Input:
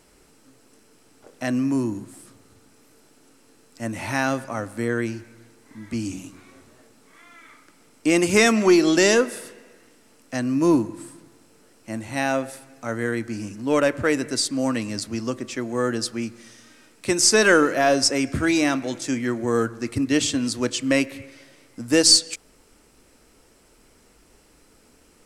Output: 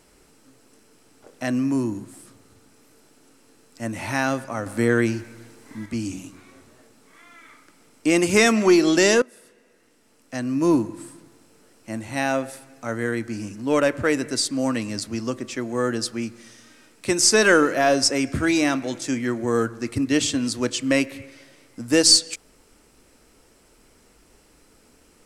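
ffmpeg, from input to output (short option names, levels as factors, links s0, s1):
-filter_complex "[0:a]asettb=1/sr,asplit=3[s0][s1][s2];[s0]atrim=end=4.664[s3];[s1]atrim=start=4.66:end=5.86,asetpts=PTS-STARTPTS,afade=t=in:d=0.004:c=qsin,afade=t=out:st=1.196:d=0.004:c=qsin,acontrast=36[s4];[s2]atrim=start=5.856[s5];[s3][s4]acrossfade=d=0.004:c1=hsin:c2=qsin[s6];[s6][s5]acrossfade=d=0.004:c1=qsin:c2=hsin,asplit=2[s7][s8];[s7]atrim=end=9.22,asetpts=PTS-STARTPTS,afade=t=out:st=9.216:d=0.004:c=hsin:silence=0.1[s9];[s8]atrim=start=9.22,asetpts=PTS-STARTPTS,afade=t=in:d=1.62:silence=0.1[s10];[s9][s10]concat=n=2:v=0:a=1"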